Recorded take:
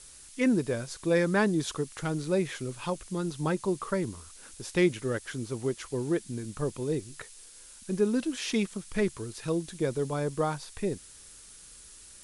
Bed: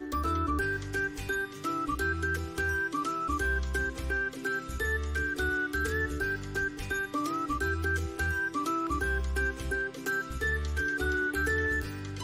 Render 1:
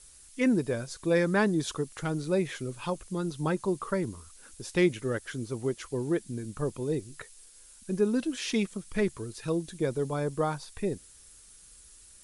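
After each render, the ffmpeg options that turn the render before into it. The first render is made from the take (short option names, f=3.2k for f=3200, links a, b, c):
-af "afftdn=nr=6:nf=-51"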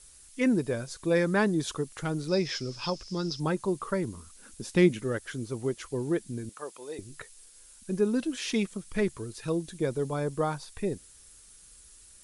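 -filter_complex "[0:a]asettb=1/sr,asplit=3[a][b][c];[a]atrim=end=2.284[d];[b]atrim=start=2.28:end=3.4,asetpts=PTS-STARTPTS,afade=t=in:d=0.004:c=qsin,afade=t=out:st=1.116:d=0.004:c=qsin,lowpass=f=5.2k:t=q:w=14[e];[c]atrim=start=3.396[f];[d][e]acrossfade=d=0.004:c1=hsin:c2=qsin[g];[g][f]acrossfade=d=0.004:c1=qsin:c2=hsin,asettb=1/sr,asplit=3[h][i][j];[h]atrim=end=4.144[k];[i]atrim=start=4.14:end=5.04,asetpts=PTS-STARTPTS,afade=t=in:d=0.004:c=qsin,afade=t=out:st=0.896:d=0.004:c=qsin,equalizer=f=220:t=o:w=0.77:g=9[l];[j]atrim=start=5.036[m];[k][l]acrossfade=d=0.004:c1=hsin:c2=qsin[n];[n][m]acrossfade=d=0.004:c1=qsin:c2=hsin,asettb=1/sr,asplit=3[o][p][q];[o]atrim=end=6.494[r];[p]atrim=start=6.49:end=6.99,asetpts=PTS-STARTPTS,afade=t=in:d=0.004:c=qsin,afade=t=out:st=0.496:d=0.004:c=qsin,highpass=670[s];[q]atrim=start=6.986[t];[r][s]acrossfade=d=0.004:c1=hsin:c2=qsin[u];[u][t]acrossfade=d=0.004:c1=qsin:c2=hsin"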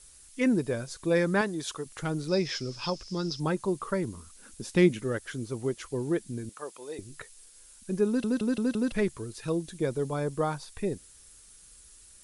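-filter_complex "[0:a]asettb=1/sr,asplit=3[a][b][c];[a]atrim=end=1.414[d];[b]atrim=start=1.41:end=1.86,asetpts=PTS-STARTPTS,afade=t=in:d=0.004:c=qsin,afade=t=out:st=0.446:d=0.004:c=qsin,lowshelf=f=400:g=-10[e];[c]atrim=start=1.856[f];[d][e]acrossfade=d=0.004:c1=hsin:c2=qsin[g];[g][f]acrossfade=d=0.004:c1=qsin:c2=hsin,asplit=6[h][i][j][k][l][m];[h]atrim=end=8.242[n];[i]atrim=start=8.068:end=8.242[o];[j]atrim=start=8.068:end=8.242[p];[k]atrim=start=8.068:end=8.242[q];[l]atrim=start=8.068:end=8.242[r];[m]atrim=start=8.918[s];[n][o]acrossfade=d=0.004:c1=hsin:c2=hsin[t];[t][p]acrossfade=d=0.004:c1=hsin:c2=hsin[u];[u][q]acrossfade=d=0.004:c1=hsin:c2=hsin[v];[v][r]acrossfade=d=0.004:c1=hsin:c2=hsin[w];[w][s]acrossfade=d=0.004:c1=hsin:c2=hsin"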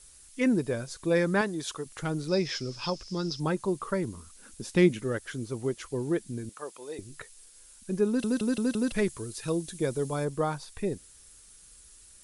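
-filter_complex "[0:a]asettb=1/sr,asplit=3[a][b][c];[a]atrim=end=8.194[d];[b]atrim=start=8.19:end=10.25,asetpts=PTS-STARTPTS,afade=t=in:d=0.004:c=qsin,afade=t=out:st=2.056:d=0.004:c=qsin,highshelf=f=4.9k:g=7.5[e];[c]atrim=start=10.246[f];[d][e]acrossfade=d=0.004:c1=hsin:c2=qsin[g];[g][f]acrossfade=d=0.004:c1=qsin:c2=hsin"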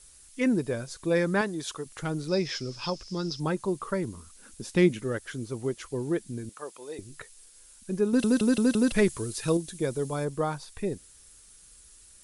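-filter_complex "[0:a]asplit=3[a][b][c];[a]atrim=end=8.132[d];[b]atrim=start=8.128:end=9.572,asetpts=PTS-STARTPTS,volume=4.5dB[e];[c]atrim=start=9.568[f];[d][e]acrossfade=d=0.004:c1=hsin:c2=hsin[g];[g][f]acrossfade=d=0.004:c1=hsin:c2=hsin"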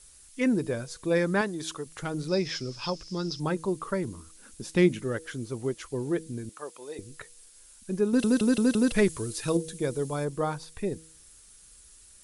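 -af "bandreject=f=160.4:t=h:w=4,bandreject=f=320.8:t=h:w=4,bandreject=f=481.2:t=h:w=4"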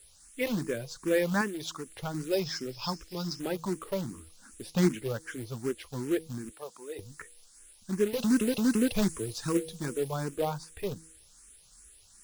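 -filter_complex "[0:a]acrusher=bits=3:mode=log:mix=0:aa=0.000001,asplit=2[a][b];[b]afreqshift=2.6[c];[a][c]amix=inputs=2:normalize=1"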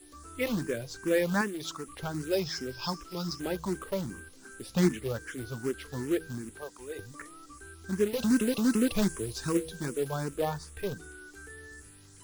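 -filter_complex "[1:a]volume=-19dB[a];[0:a][a]amix=inputs=2:normalize=0"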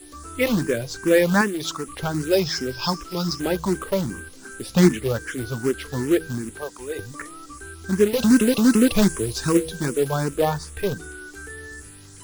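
-af "volume=9.5dB"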